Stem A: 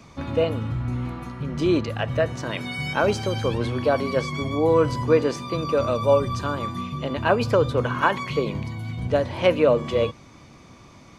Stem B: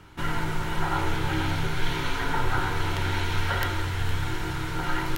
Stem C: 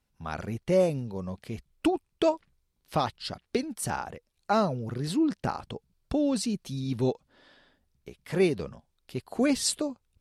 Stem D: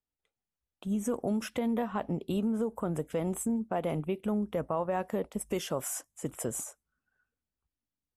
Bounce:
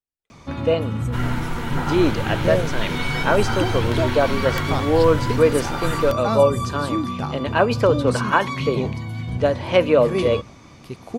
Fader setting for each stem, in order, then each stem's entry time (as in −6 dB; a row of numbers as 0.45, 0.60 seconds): +2.5, +0.5, 0.0, −5.5 decibels; 0.30, 0.95, 1.75, 0.00 seconds